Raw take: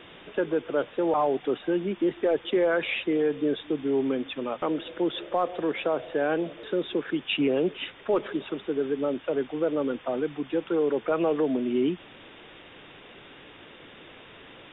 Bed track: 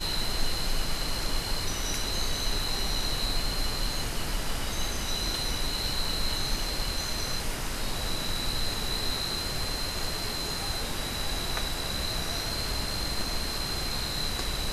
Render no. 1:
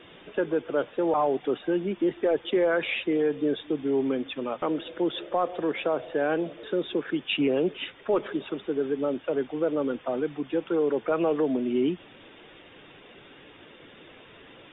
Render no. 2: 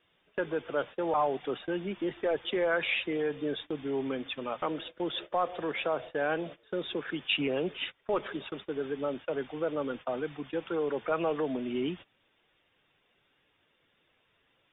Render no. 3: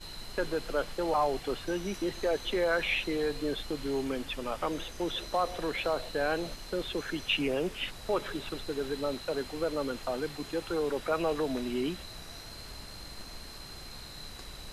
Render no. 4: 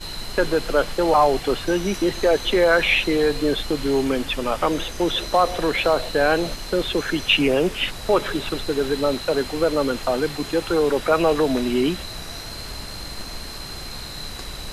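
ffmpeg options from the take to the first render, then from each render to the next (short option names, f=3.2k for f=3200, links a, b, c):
-af "afftdn=nr=6:nf=-49"
-af "agate=range=-19dB:threshold=-37dB:ratio=16:detection=peak,equalizer=f=320:t=o:w=1.8:g=-8"
-filter_complex "[1:a]volume=-14dB[a];[0:a][a]amix=inputs=2:normalize=0"
-af "volume=11.5dB"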